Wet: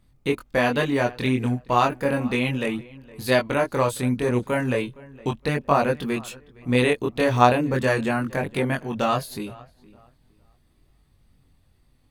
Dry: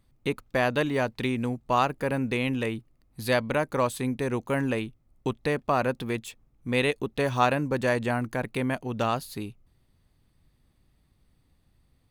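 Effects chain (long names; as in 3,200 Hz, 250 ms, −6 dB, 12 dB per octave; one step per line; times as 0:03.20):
feedback echo with a low-pass in the loop 463 ms, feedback 26%, low-pass 3,300 Hz, level −21.5 dB
tape wow and flutter 20 cents
multi-voice chorus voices 2, 0.35 Hz, delay 23 ms, depth 2.1 ms
level +7 dB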